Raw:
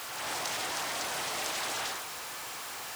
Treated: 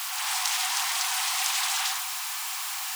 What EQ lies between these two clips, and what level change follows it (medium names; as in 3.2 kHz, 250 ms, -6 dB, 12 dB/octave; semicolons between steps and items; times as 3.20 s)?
rippled Chebyshev high-pass 730 Hz, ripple 3 dB; treble shelf 4.6 kHz +8.5 dB; +5.5 dB